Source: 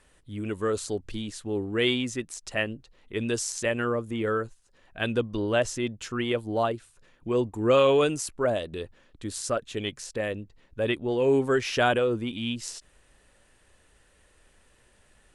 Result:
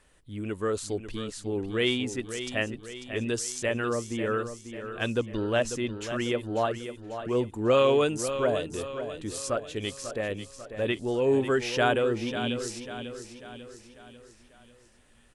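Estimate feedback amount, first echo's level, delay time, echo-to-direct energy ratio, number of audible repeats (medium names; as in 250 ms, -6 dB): 49%, -10.0 dB, 544 ms, -9.0 dB, 5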